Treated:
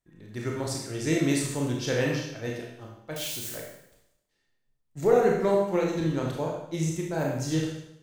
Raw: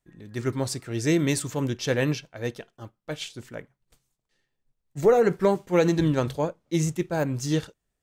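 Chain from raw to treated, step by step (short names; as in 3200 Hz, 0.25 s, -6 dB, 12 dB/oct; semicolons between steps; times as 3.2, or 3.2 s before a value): 3.16–3.57 switching spikes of -27.5 dBFS; 5.76–7.21 compressor, threshold -22 dBFS, peak gain reduction 6.5 dB; Schroeder reverb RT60 0.78 s, combs from 25 ms, DRR -1.5 dB; gain -5 dB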